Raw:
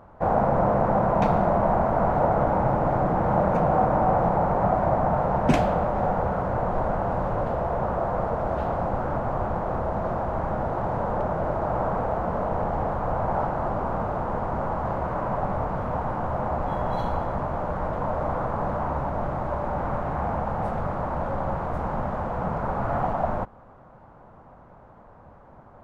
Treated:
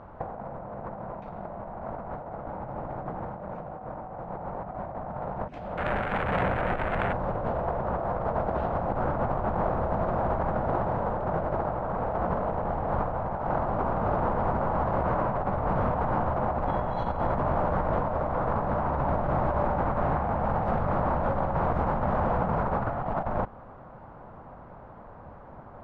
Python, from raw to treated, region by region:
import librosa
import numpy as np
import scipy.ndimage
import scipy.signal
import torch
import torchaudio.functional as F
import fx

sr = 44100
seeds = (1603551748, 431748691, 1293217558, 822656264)

y = fx.chain(x, sr, fx.self_delay(depth_ms=0.56),
    fx.resample_linear(factor=4), at=(5.77, 7.13))
y = scipy.signal.sosfilt(scipy.signal.butter(2, 4000.0, 'lowpass', fs=sr, output='sos'), y)
y = fx.over_compress(y, sr, threshold_db=-28.0, ratio=-0.5)